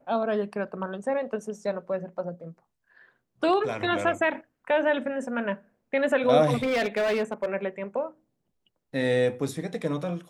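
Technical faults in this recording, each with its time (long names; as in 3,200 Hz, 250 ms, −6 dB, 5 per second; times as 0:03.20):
0:06.56–0:07.46: clipping −21.5 dBFS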